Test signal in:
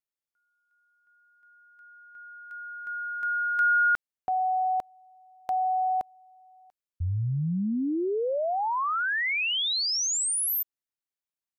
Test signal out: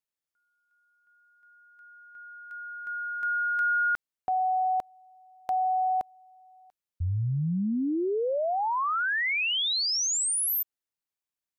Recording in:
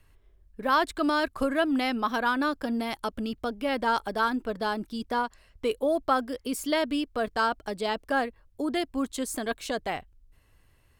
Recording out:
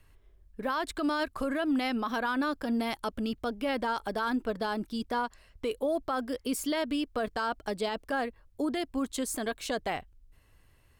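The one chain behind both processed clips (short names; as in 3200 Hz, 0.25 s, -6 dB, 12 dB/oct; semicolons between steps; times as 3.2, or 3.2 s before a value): limiter -22 dBFS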